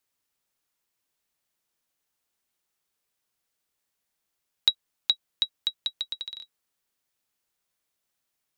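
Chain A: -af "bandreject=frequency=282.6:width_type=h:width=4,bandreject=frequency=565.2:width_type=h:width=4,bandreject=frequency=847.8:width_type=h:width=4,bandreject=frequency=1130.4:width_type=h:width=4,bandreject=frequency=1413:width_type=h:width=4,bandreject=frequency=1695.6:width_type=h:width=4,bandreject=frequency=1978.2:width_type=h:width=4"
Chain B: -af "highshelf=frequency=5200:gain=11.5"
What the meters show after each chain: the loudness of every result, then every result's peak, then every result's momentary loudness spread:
−29.0, −25.0 LKFS; −7.0, −3.0 dBFS; 10, 10 LU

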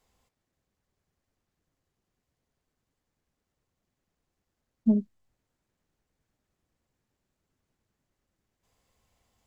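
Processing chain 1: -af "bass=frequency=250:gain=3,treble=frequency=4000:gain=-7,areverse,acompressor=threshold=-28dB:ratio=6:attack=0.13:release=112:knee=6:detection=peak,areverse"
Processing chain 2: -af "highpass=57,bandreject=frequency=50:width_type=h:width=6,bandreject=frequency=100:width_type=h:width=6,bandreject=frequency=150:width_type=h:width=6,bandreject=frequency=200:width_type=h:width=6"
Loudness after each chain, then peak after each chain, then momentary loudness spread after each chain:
−36.5, −28.0 LKFS; −25.5, −13.0 dBFS; 10, 12 LU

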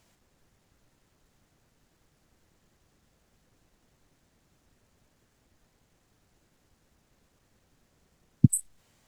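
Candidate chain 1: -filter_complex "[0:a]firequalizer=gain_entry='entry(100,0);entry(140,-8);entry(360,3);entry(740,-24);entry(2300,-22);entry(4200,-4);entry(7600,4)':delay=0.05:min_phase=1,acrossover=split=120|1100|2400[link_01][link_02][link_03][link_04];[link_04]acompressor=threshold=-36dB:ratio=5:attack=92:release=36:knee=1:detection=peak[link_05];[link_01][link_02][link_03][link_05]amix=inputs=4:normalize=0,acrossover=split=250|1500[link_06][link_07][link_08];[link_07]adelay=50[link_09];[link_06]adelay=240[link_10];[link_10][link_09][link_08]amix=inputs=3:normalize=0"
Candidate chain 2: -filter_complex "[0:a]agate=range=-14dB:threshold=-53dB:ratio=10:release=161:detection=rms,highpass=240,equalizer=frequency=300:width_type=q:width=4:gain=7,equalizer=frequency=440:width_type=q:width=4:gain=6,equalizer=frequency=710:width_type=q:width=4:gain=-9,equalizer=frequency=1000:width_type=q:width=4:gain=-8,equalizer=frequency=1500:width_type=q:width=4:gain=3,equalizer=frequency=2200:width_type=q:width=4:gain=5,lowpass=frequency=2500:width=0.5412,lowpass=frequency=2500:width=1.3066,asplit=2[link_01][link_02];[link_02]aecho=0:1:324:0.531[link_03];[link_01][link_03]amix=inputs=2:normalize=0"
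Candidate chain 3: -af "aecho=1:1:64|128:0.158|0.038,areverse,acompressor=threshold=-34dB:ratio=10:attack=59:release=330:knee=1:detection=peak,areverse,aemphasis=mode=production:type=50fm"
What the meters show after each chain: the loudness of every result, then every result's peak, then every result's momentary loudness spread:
−30.5, −31.0, −27.5 LKFS; −10.5, −7.5, −8.5 dBFS; 9, 6, 13 LU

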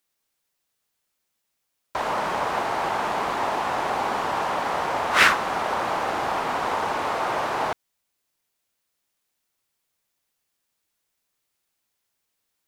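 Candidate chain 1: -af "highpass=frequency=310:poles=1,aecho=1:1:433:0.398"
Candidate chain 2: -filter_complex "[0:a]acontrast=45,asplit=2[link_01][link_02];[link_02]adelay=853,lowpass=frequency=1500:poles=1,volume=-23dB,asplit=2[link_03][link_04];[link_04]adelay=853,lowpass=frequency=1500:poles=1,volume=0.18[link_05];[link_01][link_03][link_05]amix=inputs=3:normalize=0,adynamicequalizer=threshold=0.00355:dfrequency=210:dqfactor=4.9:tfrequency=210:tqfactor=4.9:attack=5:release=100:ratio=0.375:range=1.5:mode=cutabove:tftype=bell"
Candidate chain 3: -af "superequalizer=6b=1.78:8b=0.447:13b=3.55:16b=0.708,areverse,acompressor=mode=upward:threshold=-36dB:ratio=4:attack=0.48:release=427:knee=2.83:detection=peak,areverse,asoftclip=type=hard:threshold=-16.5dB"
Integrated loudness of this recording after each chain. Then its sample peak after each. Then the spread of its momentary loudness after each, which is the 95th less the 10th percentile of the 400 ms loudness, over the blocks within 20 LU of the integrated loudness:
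−24.0, −19.0, −24.5 LKFS; −4.0, −1.5, −16.5 dBFS; 10, 7, 5 LU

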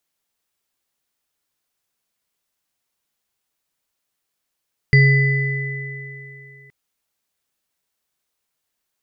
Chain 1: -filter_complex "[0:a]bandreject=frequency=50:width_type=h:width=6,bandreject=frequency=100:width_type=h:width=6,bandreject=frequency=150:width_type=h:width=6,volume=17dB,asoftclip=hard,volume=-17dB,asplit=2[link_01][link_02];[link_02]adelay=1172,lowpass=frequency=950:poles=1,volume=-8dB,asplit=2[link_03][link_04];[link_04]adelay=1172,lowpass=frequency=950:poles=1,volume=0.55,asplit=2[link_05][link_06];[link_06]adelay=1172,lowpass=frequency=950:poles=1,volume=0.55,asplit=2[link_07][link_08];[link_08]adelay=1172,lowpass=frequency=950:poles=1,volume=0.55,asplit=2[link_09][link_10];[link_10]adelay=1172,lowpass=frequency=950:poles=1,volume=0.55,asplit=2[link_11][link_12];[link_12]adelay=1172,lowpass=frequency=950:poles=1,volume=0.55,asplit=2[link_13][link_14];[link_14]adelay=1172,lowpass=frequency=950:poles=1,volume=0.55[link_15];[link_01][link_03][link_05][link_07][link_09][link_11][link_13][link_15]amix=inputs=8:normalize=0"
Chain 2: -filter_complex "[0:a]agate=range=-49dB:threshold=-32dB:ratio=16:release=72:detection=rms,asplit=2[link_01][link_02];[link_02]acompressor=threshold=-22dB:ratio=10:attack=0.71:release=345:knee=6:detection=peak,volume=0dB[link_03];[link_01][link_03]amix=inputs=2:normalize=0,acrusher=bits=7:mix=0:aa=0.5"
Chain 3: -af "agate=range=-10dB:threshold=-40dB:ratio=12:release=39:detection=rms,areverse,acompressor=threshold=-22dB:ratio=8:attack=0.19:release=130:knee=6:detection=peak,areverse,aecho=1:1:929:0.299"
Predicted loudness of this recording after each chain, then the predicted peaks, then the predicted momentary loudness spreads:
−24.0, −15.5, −29.5 LKFS; −17.0, −3.0, −19.5 dBFS; 22, 14, 17 LU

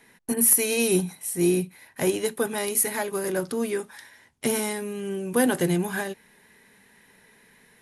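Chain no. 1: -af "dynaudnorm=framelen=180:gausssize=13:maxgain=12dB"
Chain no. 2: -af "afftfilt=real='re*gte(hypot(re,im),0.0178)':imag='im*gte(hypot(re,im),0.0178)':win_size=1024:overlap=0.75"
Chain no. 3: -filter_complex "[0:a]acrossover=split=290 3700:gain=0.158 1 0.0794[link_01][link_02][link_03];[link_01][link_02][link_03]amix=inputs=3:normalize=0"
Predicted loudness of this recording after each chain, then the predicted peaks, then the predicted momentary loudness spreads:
−19.5, −24.5, −30.0 LKFS; −1.0, −4.0, −12.5 dBFS; 11, 12, 10 LU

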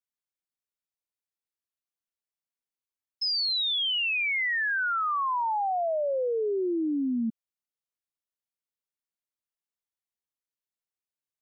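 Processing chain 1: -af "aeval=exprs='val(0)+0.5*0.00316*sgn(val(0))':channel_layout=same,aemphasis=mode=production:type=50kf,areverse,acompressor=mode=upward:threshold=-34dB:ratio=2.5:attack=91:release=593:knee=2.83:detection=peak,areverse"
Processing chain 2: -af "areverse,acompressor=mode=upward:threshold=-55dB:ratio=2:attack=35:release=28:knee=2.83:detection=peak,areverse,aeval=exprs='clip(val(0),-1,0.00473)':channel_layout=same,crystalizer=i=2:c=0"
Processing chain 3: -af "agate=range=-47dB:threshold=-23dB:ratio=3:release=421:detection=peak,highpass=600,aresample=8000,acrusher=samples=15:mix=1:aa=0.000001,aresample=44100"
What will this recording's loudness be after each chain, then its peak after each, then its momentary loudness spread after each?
−27.5, −28.0, −36.0 LKFS; −3.0, −18.0, −27.0 dBFS; 16, 9, 14 LU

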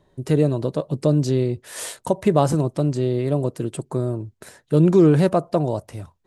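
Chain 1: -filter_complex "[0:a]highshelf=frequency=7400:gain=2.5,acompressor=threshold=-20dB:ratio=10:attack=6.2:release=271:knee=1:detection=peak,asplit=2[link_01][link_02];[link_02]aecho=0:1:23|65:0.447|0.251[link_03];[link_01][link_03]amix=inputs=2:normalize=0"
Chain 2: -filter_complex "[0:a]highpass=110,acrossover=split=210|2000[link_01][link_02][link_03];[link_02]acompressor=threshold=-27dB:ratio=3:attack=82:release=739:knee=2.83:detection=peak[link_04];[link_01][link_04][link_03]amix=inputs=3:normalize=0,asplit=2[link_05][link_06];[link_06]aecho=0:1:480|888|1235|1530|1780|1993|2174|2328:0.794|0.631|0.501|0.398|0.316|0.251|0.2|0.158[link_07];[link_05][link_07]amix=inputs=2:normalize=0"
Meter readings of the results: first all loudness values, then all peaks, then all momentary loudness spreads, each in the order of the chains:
−27.0, −21.0 LKFS; −10.5, −5.5 dBFS; 6, 5 LU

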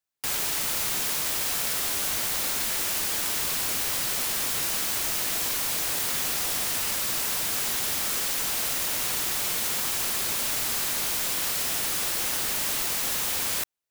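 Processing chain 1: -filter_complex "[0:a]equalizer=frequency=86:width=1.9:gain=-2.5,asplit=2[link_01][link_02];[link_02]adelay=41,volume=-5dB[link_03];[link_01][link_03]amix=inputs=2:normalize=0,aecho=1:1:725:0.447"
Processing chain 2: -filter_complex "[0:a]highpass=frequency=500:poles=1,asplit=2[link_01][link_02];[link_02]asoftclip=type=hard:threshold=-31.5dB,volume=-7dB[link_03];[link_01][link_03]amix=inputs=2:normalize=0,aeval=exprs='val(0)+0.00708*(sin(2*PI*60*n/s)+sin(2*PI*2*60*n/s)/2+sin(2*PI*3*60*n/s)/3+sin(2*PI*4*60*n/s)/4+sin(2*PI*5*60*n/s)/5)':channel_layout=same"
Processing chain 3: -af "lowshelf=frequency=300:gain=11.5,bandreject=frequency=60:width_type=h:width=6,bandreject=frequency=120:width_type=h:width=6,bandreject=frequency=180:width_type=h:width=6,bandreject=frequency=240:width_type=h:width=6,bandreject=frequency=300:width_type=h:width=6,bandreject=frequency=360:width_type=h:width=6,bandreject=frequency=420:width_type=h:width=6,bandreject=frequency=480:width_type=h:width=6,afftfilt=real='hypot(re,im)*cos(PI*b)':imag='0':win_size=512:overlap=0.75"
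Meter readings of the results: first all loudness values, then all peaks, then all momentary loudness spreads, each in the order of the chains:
−22.5, −23.0, −28.0 LKFS; −12.5, −13.5, −9.0 dBFS; 0, 0, 0 LU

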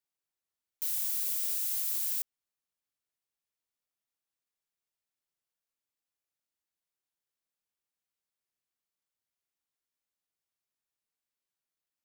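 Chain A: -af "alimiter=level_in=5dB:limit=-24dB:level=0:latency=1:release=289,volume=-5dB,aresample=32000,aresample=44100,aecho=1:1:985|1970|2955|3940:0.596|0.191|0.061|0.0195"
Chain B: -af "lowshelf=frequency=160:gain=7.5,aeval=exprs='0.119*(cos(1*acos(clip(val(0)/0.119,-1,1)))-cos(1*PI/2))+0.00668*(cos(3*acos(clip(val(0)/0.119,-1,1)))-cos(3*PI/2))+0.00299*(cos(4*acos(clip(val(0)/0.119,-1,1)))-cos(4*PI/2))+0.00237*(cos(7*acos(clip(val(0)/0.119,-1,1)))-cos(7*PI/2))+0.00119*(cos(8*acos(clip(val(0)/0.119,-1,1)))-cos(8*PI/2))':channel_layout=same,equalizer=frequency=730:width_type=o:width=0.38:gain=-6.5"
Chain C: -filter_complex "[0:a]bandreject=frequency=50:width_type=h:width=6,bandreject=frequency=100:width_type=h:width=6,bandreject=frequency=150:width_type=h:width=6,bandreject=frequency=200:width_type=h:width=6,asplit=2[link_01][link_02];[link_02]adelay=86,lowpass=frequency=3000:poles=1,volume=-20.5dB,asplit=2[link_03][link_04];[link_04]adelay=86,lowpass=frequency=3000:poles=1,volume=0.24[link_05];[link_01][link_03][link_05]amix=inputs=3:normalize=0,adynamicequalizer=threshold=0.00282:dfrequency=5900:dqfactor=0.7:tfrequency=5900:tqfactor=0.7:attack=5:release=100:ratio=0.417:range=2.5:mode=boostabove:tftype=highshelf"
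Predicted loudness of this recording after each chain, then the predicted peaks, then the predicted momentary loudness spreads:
−42.5, −31.0, −24.5 LKFS; −31.0, −19.0, −14.0 dBFS; 16, 6, 6 LU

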